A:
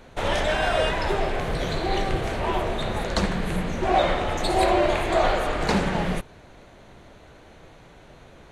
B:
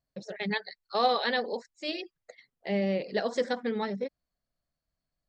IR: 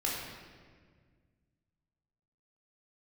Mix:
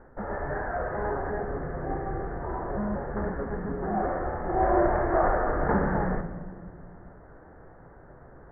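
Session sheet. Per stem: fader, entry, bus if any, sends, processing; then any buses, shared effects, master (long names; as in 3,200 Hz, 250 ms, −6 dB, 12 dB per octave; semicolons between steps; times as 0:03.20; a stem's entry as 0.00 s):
−4.0 dB, 0.00 s, send −10.5 dB, automatic ducking −17 dB, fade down 0.30 s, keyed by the second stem
+2.0 dB, 0.00 s, no send, vocoder with an arpeggio as carrier bare fifth, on C#3, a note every 184 ms; soft clipping −31.5 dBFS, distortion −7 dB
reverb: on, RT60 1.7 s, pre-delay 14 ms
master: Butterworth low-pass 1,800 Hz 72 dB per octave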